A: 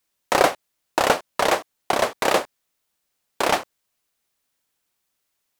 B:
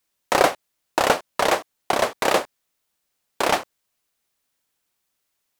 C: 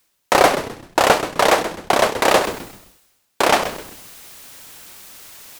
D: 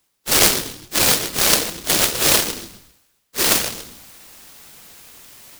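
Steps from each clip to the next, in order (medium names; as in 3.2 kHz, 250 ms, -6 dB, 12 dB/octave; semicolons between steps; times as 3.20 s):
no audible change
saturation -8 dBFS, distortion -17 dB; reverse; upward compressor, threshold -24 dBFS; reverse; frequency-shifting echo 129 ms, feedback 34%, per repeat -140 Hz, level -11 dB; trim +6 dB
phase randomisation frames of 100 ms; delay time shaken by noise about 4.3 kHz, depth 0.43 ms; trim -1 dB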